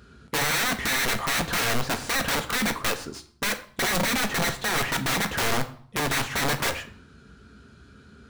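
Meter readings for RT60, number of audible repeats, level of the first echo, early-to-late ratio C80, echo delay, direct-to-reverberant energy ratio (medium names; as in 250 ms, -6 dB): 0.55 s, no echo, no echo, 17.5 dB, no echo, 6.5 dB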